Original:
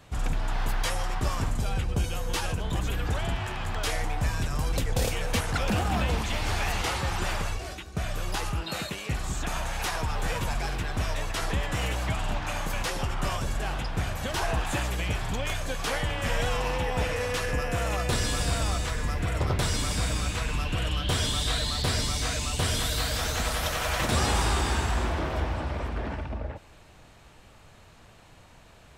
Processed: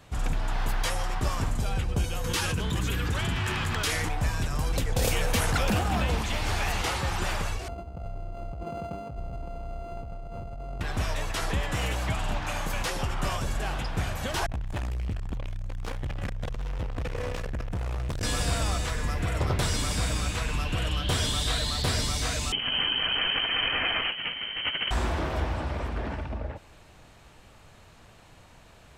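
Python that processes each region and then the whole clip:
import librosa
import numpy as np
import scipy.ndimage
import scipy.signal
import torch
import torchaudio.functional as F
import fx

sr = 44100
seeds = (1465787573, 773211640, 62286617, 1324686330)

y = fx.chain(x, sr, fx.highpass(hz=64.0, slope=12),
    fx.peak_eq(hz=690.0, db=-10.0, octaves=0.82),
    fx.env_flatten(amount_pct=70), at=(2.24, 4.09))
y = fx.chain(y, sr, fx.high_shelf(hz=12000.0, db=7.5),
    fx.env_flatten(amount_pct=70), at=(5.03, 5.78))
y = fx.chain(y, sr, fx.sample_sort(block=64),
    fx.over_compress(threshold_db=-34.0, ratio=-1.0),
    fx.moving_average(points=24), at=(7.68, 10.81))
y = fx.chain(y, sr, fx.tilt_eq(slope=-2.0),
    fx.clip_hard(threshold_db=-26.0),
    fx.transformer_sat(knee_hz=55.0), at=(14.46, 18.23))
y = fx.chain(y, sr, fx.freq_invert(carrier_hz=3100),
    fx.over_compress(threshold_db=-28.0, ratio=-0.5), at=(22.52, 24.91))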